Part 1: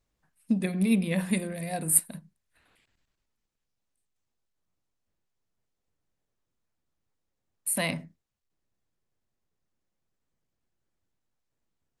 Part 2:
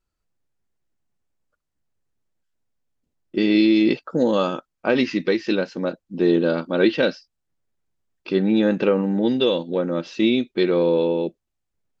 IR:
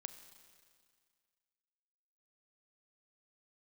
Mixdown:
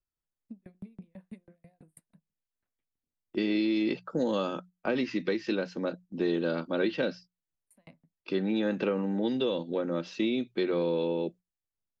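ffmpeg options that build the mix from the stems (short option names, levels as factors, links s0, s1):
-filter_complex "[0:a]lowpass=f=1100:p=1,aeval=exprs='val(0)*pow(10,-40*if(lt(mod(6.1*n/s,1),2*abs(6.1)/1000),1-mod(6.1*n/s,1)/(2*abs(6.1)/1000),(mod(6.1*n/s,1)-2*abs(6.1)/1000)/(1-2*abs(6.1)/1000))/20)':c=same,volume=0.211[s0];[1:a]bandreject=f=60:t=h:w=6,bandreject=f=120:t=h:w=6,bandreject=f=180:t=h:w=6,agate=range=0.316:threshold=0.01:ratio=16:detection=peak,volume=0.501[s1];[s0][s1]amix=inputs=2:normalize=0,acrossover=split=300|620|1400[s2][s3][s4][s5];[s2]acompressor=threshold=0.0282:ratio=4[s6];[s3]acompressor=threshold=0.0251:ratio=4[s7];[s4]acompressor=threshold=0.0158:ratio=4[s8];[s5]acompressor=threshold=0.0126:ratio=4[s9];[s6][s7][s8][s9]amix=inputs=4:normalize=0"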